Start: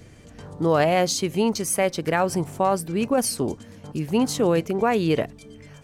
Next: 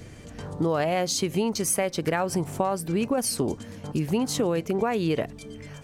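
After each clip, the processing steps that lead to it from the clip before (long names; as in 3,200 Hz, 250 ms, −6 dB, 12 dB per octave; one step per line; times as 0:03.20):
downward compressor, threshold −25 dBFS, peak gain reduction 9.5 dB
level +3.5 dB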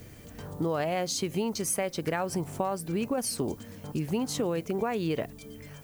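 background noise violet −54 dBFS
level −4.5 dB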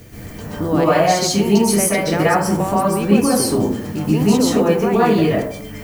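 dense smooth reverb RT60 0.61 s, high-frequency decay 0.45×, pre-delay 115 ms, DRR −8.5 dB
level +6 dB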